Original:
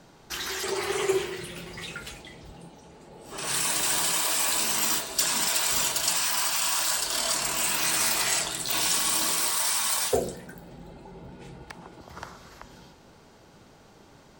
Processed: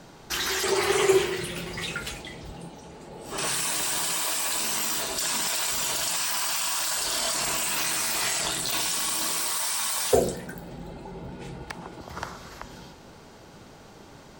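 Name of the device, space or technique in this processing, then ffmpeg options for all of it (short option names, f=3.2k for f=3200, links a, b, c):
de-esser from a sidechain: -filter_complex "[0:a]asplit=2[a][b];[b]highpass=4.3k,apad=whole_len=634667[c];[a][c]sidechaincompress=threshold=-32dB:ratio=6:attack=2.1:release=21,volume=5.5dB"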